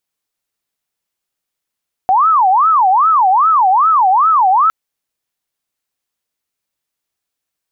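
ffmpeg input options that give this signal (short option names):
-f lavfi -i "aevalsrc='0.422*sin(2*PI*(1030*t-290/(2*PI*2.5)*sin(2*PI*2.5*t)))':d=2.61:s=44100"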